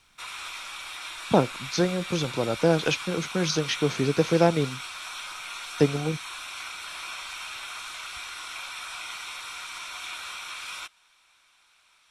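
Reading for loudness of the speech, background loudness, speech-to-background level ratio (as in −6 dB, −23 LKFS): −25.5 LKFS, −35.5 LKFS, 10.0 dB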